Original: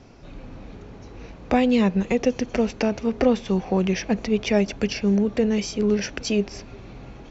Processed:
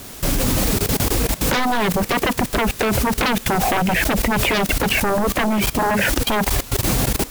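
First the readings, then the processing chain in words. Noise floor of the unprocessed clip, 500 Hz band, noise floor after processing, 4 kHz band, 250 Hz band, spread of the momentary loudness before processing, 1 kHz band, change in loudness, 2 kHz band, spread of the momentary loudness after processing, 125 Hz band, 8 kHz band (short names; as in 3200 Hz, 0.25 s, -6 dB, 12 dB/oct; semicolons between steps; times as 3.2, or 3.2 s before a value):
-43 dBFS, +1.0 dB, -36 dBFS, +10.5 dB, 0.0 dB, 21 LU, +11.5 dB, +4.0 dB, +12.0 dB, 2 LU, +7.0 dB, n/a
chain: Bessel low-pass 1900 Hz, order 8; reverb removal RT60 0.94 s; in parallel at -7 dB: requantised 6-bit, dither triangular; on the sum: sine folder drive 18 dB, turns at -3.5 dBFS; level quantiser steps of 18 dB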